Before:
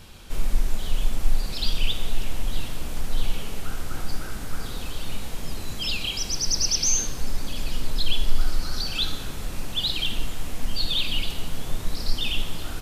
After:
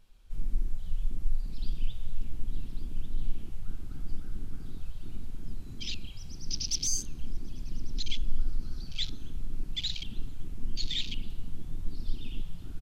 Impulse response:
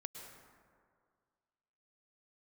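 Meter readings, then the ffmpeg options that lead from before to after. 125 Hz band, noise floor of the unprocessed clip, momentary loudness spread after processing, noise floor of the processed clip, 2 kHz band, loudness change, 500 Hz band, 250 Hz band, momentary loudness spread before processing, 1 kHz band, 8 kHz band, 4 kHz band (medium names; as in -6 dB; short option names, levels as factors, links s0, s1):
-6.5 dB, -33 dBFS, 12 LU, -42 dBFS, -15.5 dB, -9.5 dB, -17.0 dB, -8.5 dB, 11 LU, -22.5 dB, -10.0 dB, -10.5 dB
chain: -filter_complex "[0:a]asplit=2[s0][s1];[s1]adelay=1145,lowpass=f=3700:p=1,volume=0.398,asplit=2[s2][s3];[s3]adelay=1145,lowpass=f=3700:p=1,volume=0.5,asplit=2[s4][s5];[s5]adelay=1145,lowpass=f=3700:p=1,volume=0.5,asplit=2[s6][s7];[s7]adelay=1145,lowpass=f=3700:p=1,volume=0.5,asplit=2[s8][s9];[s9]adelay=1145,lowpass=f=3700:p=1,volume=0.5,asplit=2[s10][s11];[s11]adelay=1145,lowpass=f=3700:p=1,volume=0.5[s12];[s0][s2][s4][s6][s8][s10][s12]amix=inputs=7:normalize=0,afwtdn=0.0447,volume=0.447"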